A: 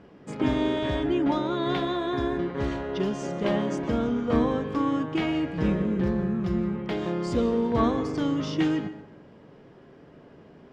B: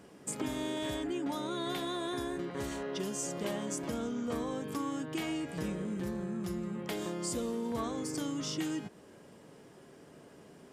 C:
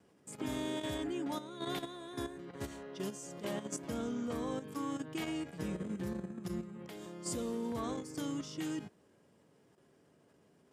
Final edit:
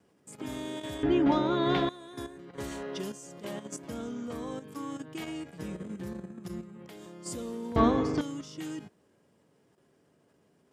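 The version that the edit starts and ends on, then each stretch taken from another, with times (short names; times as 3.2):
C
1.03–1.89 from A
2.58–3.12 from B
7.76–8.21 from A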